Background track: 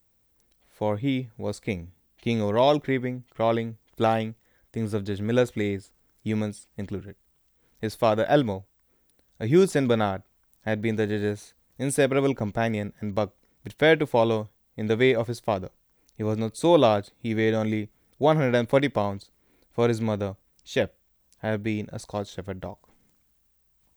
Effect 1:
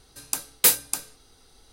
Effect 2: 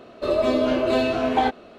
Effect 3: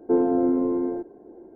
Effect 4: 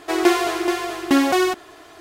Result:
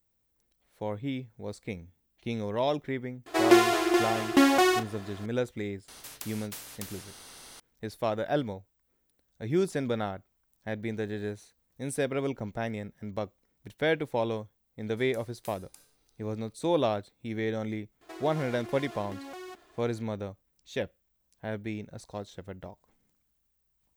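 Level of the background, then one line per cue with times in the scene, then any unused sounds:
background track -8 dB
3.26 s: add 4 -3.5 dB + doubling 34 ms -12 dB
5.88 s: add 1 -13.5 dB + spectrum-flattening compressor 10:1
14.81 s: add 1 -17.5 dB + compression, threshold -30 dBFS
18.01 s: add 4 -16.5 dB + compression, threshold -23 dBFS
not used: 2, 3

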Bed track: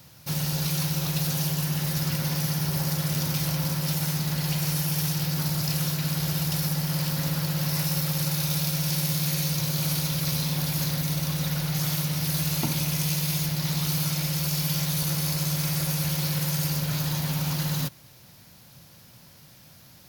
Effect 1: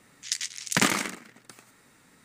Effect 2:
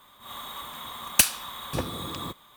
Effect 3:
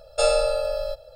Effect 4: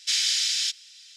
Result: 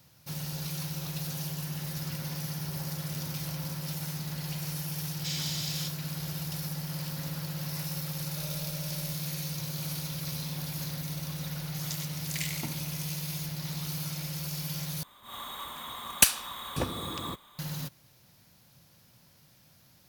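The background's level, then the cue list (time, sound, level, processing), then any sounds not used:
bed track -9 dB
5.17 s: add 4 -12 dB
8.19 s: add 3 -12.5 dB + compression 3:1, threshold -40 dBFS
11.59 s: add 1 -10.5 dB + elliptic high-pass 2 kHz
15.03 s: replace with 2 -1.5 dB

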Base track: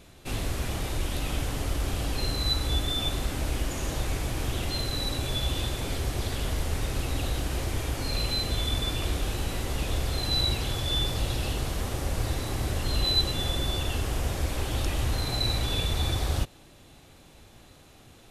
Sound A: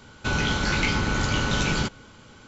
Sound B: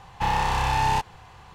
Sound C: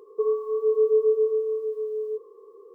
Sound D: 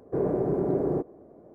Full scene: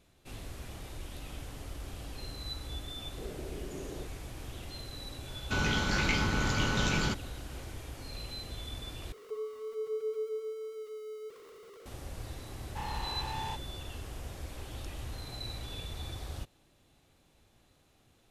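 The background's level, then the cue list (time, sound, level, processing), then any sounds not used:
base track -13.5 dB
3.05 s: add D -18 dB + Butterworth band-stop 990 Hz, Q 1.5
5.26 s: add A -5.5 dB
9.12 s: replace with C -15.5 dB + jump at every zero crossing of -33 dBFS
12.55 s: add B -16 dB

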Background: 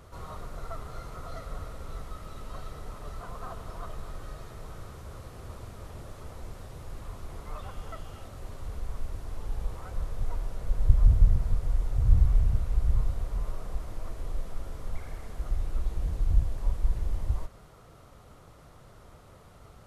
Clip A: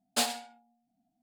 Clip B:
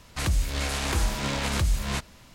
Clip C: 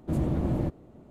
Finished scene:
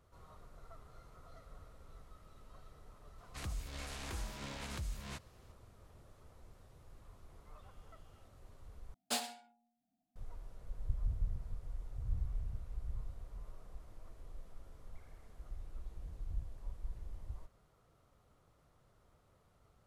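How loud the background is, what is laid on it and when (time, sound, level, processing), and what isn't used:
background -17 dB
3.18 s: add B -17 dB
8.94 s: replace with A -8.5 dB
not used: C

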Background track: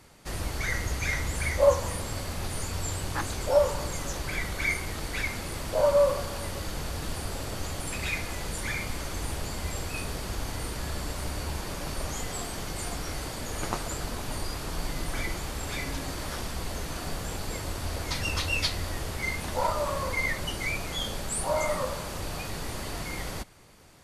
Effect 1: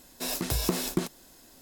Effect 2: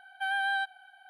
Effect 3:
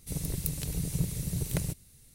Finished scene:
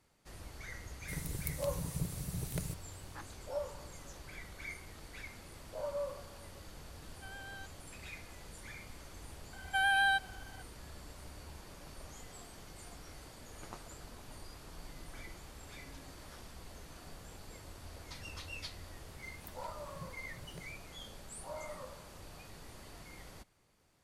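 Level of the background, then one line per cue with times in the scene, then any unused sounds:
background track -17 dB
1.01 s: add 3 -7.5 dB
7.01 s: add 2 -17 dB + high-pass 1.3 kHz 6 dB/octave
9.53 s: add 2 + treble shelf 5.7 kHz +10.5 dB
19.01 s: add 3 -18 dB + spectral noise reduction 13 dB
not used: 1

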